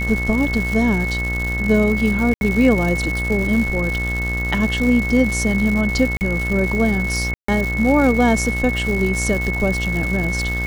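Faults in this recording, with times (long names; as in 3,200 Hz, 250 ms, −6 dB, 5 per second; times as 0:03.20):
mains buzz 60 Hz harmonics 29 −24 dBFS
surface crackle 240 per second −23 dBFS
whistle 2,200 Hz −23 dBFS
0:02.34–0:02.41: drop-out 71 ms
0:06.17–0:06.21: drop-out 39 ms
0:07.34–0:07.48: drop-out 144 ms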